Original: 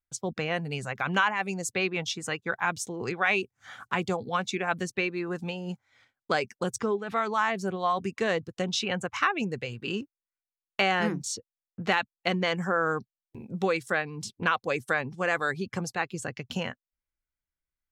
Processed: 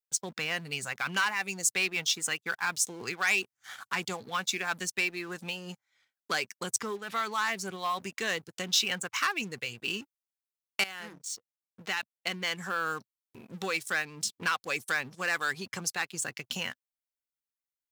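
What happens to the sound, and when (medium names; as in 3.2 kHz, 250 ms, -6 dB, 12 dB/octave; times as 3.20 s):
10.84–13.38 s: fade in linear, from -16.5 dB
whole clip: dynamic bell 600 Hz, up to -6 dB, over -41 dBFS, Q 1.1; waveshaping leveller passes 2; tilt EQ +3 dB/octave; trim -8.5 dB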